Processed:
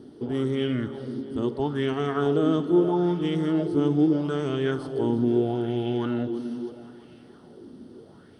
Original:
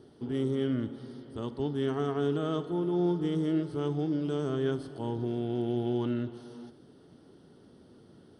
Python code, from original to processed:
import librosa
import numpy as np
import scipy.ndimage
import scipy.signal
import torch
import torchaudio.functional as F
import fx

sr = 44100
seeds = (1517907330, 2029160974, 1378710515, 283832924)

p1 = x + fx.echo_feedback(x, sr, ms=330, feedback_pct=57, wet_db=-13.5, dry=0)
p2 = fx.bell_lfo(p1, sr, hz=0.77, low_hz=240.0, high_hz=2600.0, db=11)
y = p2 * 10.0 ** (3.5 / 20.0)